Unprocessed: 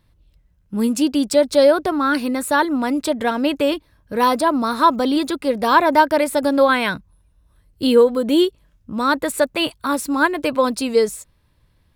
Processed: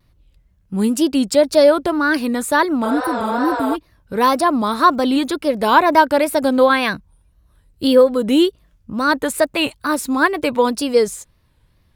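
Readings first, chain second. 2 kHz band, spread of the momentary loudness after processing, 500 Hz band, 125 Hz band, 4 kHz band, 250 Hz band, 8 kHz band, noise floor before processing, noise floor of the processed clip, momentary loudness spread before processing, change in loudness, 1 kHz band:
+2.0 dB, 9 LU, +1.0 dB, +4.0 dB, +1.0 dB, +1.5 dB, +1.5 dB, -60 dBFS, -58 dBFS, 8 LU, +1.5 dB, +1.5 dB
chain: spectral replace 2.87–3.72 s, 360–8600 Hz before; wow and flutter 130 cents; trim +1.5 dB

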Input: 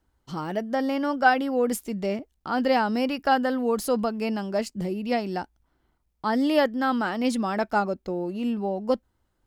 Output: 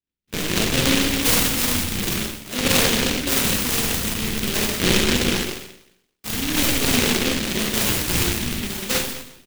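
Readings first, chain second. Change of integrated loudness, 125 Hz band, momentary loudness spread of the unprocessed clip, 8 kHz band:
+6.0 dB, +12.0 dB, 9 LU, +21.0 dB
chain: rattle on loud lows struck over -34 dBFS, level -12 dBFS; high-pass 330 Hz 12 dB/octave; gate with hold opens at -31 dBFS; treble shelf 8.3 kHz +11 dB; reverse; upward compressor, threshold -37 dBFS; reverse; sample-and-hold 22×; rotary cabinet horn 6.7 Hz, later 0.9 Hz, at 2.01 s; phase shifter stages 2, 0.45 Hz, lowest notch 530–1400 Hz; on a send: delay 125 ms -8 dB; on the sum: Schroeder reverb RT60 0.79 s, combs from 33 ms, DRR -3 dB; delay time shaken by noise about 2.7 kHz, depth 0.37 ms; trim +6 dB

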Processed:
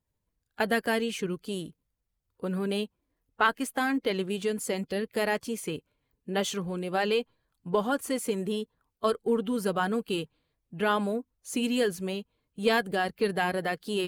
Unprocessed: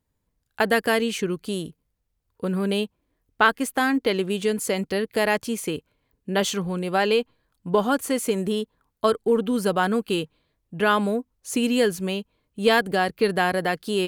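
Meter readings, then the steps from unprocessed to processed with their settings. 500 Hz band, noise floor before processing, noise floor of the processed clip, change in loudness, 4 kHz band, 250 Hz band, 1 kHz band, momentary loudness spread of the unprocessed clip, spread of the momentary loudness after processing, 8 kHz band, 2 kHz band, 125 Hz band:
-6.0 dB, -76 dBFS, -81 dBFS, -6.0 dB, -6.0 dB, -5.5 dB, -6.0 dB, 11 LU, 11 LU, -6.0 dB, -6.0 dB, -6.0 dB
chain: coarse spectral quantiser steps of 15 dB; trim -5.5 dB

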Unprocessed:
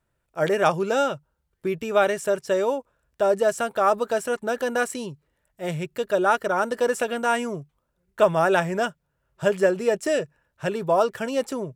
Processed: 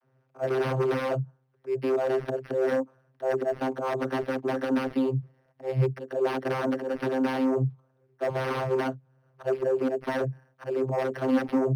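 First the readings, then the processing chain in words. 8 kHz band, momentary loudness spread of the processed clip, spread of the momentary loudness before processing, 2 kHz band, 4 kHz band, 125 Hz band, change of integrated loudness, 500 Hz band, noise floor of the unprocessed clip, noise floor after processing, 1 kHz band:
under -15 dB, 8 LU, 11 LU, -8.5 dB, -8.0 dB, +4.5 dB, -4.5 dB, -5.0 dB, -75 dBFS, -69 dBFS, -8.5 dB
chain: dynamic bell 1.4 kHz, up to -5 dB, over -37 dBFS, Q 1.3; slow attack 220 ms; bass shelf 170 Hz -9 dB; integer overflow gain 19.5 dB; Chebyshev shaper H 5 -6 dB, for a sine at -19.5 dBFS; vocoder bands 32, saw 131 Hz; decimation joined by straight lines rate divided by 6×

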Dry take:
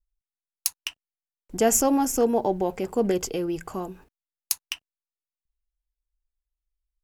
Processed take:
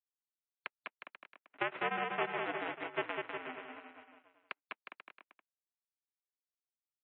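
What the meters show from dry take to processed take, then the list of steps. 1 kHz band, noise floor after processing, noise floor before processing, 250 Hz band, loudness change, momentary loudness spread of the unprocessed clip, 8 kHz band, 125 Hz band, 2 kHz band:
-9.0 dB, under -85 dBFS, under -85 dBFS, -22.5 dB, -14.5 dB, 16 LU, under -40 dB, -17.5 dB, +1.0 dB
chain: formants flattened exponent 0.1; power-law waveshaper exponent 2; compression 10:1, threshold -31 dBFS, peak gain reduction 11.5 dB; waveshaping leveller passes 1; mistuned SSB -85 Hz 360–2700 Hz; distance through air 51 m; on a send: bouncing-ball echo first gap 200 ms, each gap 0.8×, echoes 5; on the sum: spectral gate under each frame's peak -30 dB strong; trim +3 dB

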